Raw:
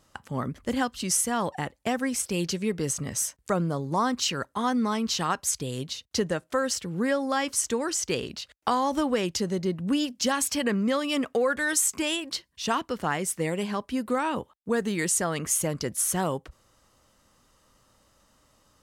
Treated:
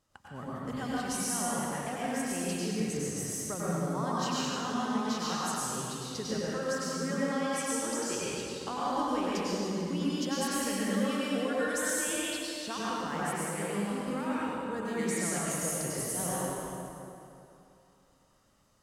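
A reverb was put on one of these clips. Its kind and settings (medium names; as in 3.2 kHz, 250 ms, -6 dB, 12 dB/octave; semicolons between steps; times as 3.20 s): plate-style reverb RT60 2.8 s, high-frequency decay 0.7×, pre-delay 85 ms, DRR -8 dB; trim -13.5 dB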